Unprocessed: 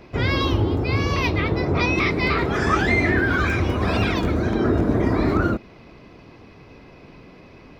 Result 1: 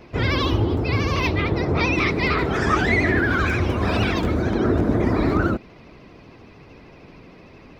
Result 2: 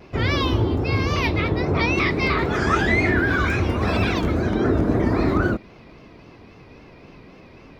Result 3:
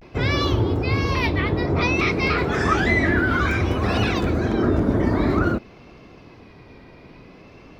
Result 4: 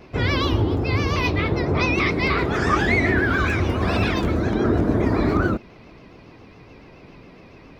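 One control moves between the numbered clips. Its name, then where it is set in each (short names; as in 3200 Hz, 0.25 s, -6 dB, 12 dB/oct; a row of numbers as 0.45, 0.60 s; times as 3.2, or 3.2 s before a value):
vibrato, rate: 13, 3.7, 0.55, 7.2 Hz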